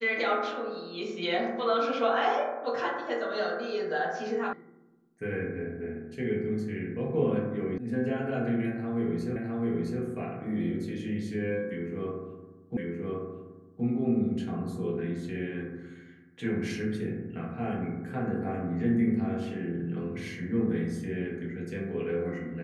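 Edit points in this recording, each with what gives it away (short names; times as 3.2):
4.53 sound cut off
7.78 sound cut off
9.36 repeat of the last 0.66 s
12.77 repeat of the last 1.07 s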